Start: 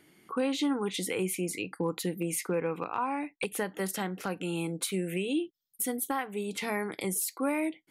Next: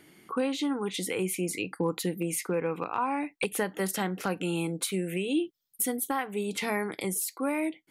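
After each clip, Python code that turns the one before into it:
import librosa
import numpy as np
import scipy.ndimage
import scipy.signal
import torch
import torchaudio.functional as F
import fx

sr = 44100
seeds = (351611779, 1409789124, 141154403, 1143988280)

y = fx.rider(x, sr, range_db=10, speed_s=0.5)
y = F.gain(torch.from_numpy(y), 1.5).numpy()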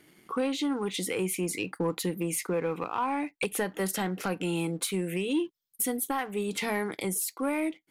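y = fx.leveller(x, sr, passes=1)
y = F.gain(torch.from_numpy(y), -3.0).numpy()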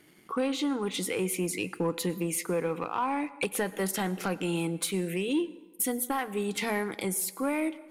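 y = fx.rev_plate(x, sr, seeds[0], rt60_s=1.2, hf_ratio=0.65, predelay_ms=85, drr_db=17.5)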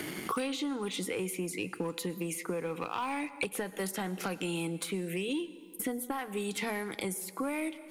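y = fx.band_squash(x, sr, depth_pct=100)
y = F.gain(torch.from_numpy(y), -5.5).numpy()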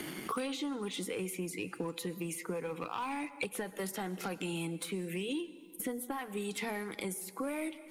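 y = fx.spec_quant(x, sr, step_db=15)
y = F.gain(torch.from_numpy(y), -2.5).numpy()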